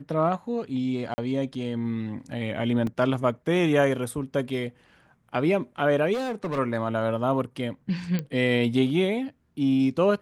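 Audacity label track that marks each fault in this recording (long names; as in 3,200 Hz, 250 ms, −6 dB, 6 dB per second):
1.140000	1.180000	drop-out 40 ms
2.870000	2.870000	drop-out 2.7 ms
6.130000	6.590000	clipping −25.5 dBFS
8.190000	8.190000	click −16 dBFS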